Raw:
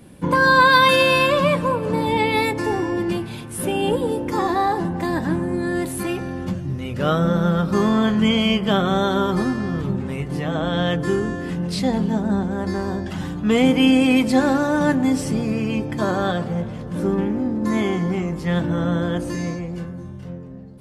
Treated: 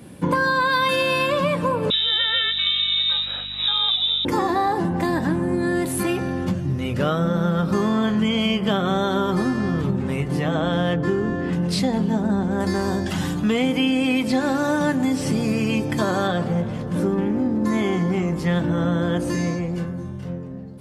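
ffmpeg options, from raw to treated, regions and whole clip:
-filter_complex "[0:a]asettb=1/sr,asplit=3[s0][s1][s2];[s0]atrim=end=1.904[s3];[s1]atrim=start=1.9:end=4.25,asetpts=PTS-STARTPTS,afade=t=in:d=0.004:c=qsin,afade=t=out:st=2.346:d=0.004:c=qsin,lowpass=f=3400:t=q:w=0.5098,lowpass=f=3400:t=q:w=0.6013,lowpass=f=3400:t=q:w=0.9,lowpass=f=3400:t=q:w=2.563,afreqshift=-4000,aeval=exprs='val(0)+0.00708*(sin(2*PI*50*n/s)+sin(2*PI*2*50*n/s)/2+sin(2*PI*3*50*n/s)/3+sin(2*PI*4*50*n/s)/4+sin(2*PI*5*50*n/s)/5)':c=same[s4];[s2]atrim=start=4.246[s5];[s3][s4]acrossfade=d=0.004:c1=hsin:c2=qsin[s6];[s6][s5]acrossfade=d=0.004:c1=qsin:c2=hsin,asettb=1/sr,asplit=3[s7][s8][s9];[s7]atrim=end=10.724[s10];[s8]atrim=start=10.72:end=11.53,asetpts=PTS-STARTPTS,afade=t=in:d=0.004:c=qsin,afade=t=out:st=0.806:d=0.004:c=qsin,highshelf=f=3300:g=-7.5,adynamicsmooth=sensitivity=7.5:basefreq=5700[s11];[s9]atrim=start=11.526[s12];[s10][s11]acrossfade=d=0.004:c1=hsin:c2=qsin[s13];[s13][s12]acrossfade=d=0.004:c1=qsin:c2=hsin,asettb=1/sr,asplit=3[s14][s15][s16];[s14]atrim=end=12.604[s17];[s15]atrim=start=12.6:end=16.28,asetpts=PTS-STARTPTS,afade=t=in:d=0.004:c=qsin,afade=t=out:st=3.676:d=0.004:c=qsin,acrossover=split=4300[s18][s19];[s19]acompressor=threshold=0.00447:ratio=4:attack=1:release=60[s20];[s18][s20]amix=inputs=2:normalize=0,highshelf=f=4000:g=11[s21];[s16]atrim=start=16.276[s22];[s17][s21]acrossfade=d=0.004:c1=hsin:c2=qsin[s23];[s23][s22]acrossfade=d=0.004:c1=qsin:c2=hsin,highpass=68,acompressor=threshold=0.0891:ratio=6,volume=1.5"

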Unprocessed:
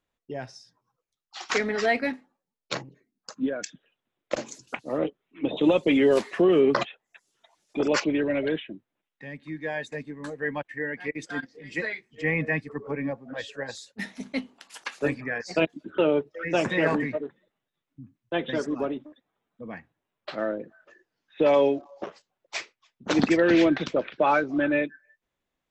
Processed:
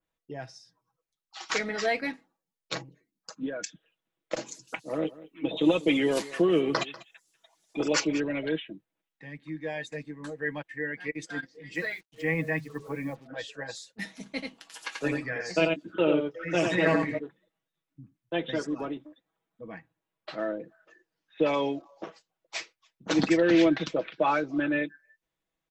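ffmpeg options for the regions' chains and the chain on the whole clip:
-filter_complex "[0:a]asettb=1/sr,asplit=3[s0][s1][s2];[s0]atrim=end=4.654[s3];[s1]atrim=start=4.65:end=8.2,asetpts=PTS-STARTPTS,afade=t=in:d=0.004:c=qsin,afade=t=out:st=3.546:d=0.004:c=qsin,highshelf=f=6400:g=8.5,aecho=1:1:193:0.119,atrim=end_sample=156555[s4];[s2]atrim=start=8.196[s5];[s3][s4]acrossfade=d=0.004:c1=hsin:c2=qsin[s6];[s6][s5]acrossfade=d=0.004:c1=qsin:c2=hsin,asettb=1/sr,asplit=3[s7][s8][s9];[s7]atrim=end=11.754[s10];[s8]atrim=start=11.75:end=13.27,asetpts=PTS-STARTPTS,afade=t=in:d=0.004:c=qsin,afade=t=out:st=1.516:d=0.004:c=qsin,bandreject=f=50:t=h:w=6,bandreject=f=100:t=h:w=6,bandreject=f=150:t=h:w=6,bandreject=f=200:t=h:w=6,acrusher=bits=8:mix=0:aa=0.5[s11];[s9]atrim=start=13.266[s12];[s10][s11]acrossfade=d=0.004:c1=hsin:c2=qsin[s13];[s13][s12]acrossfade=d=0.004:c1=qsin:c2=hsin,asettb=1/sr,asplit=3[s14][s15][s16];[s14]atrim=end=14.294[s17];[s15]atrim=start=14.29:end=17.19,asetpts=PTS-STARTPTS,afade=t=in:d=0.004:c=qsin,afade=t=out:st=2.896:d=0.004:c=qsin,asplit=2[s18][s19];[s19]adelay=17,volume=0.2[s20];[s18][s20]amix=inputs=2:normalize=0,atrim=end_sample=127890,aecho=1:1:87:0.631,atrim=end_sample=127890[s21];[s16]atrim=start=17.186[s22];[s17][s21]acrossfade=d=0.004:c1=hsin:c2=qsin[s23];[s23][s22]acrossfade=d=0.004:c1=qsin:c2=hsin,aecho=1:1:6.2:0.51,adynamicequalizer=threshold=0.0112:dfrequency=2700:dqfactor=0.7:tfrequency=2700:tqfactor=0.7:attack=5:release=100:ratio=0.375:range=2:mode=boostabove:tftype=highshelf,volume=0.596"

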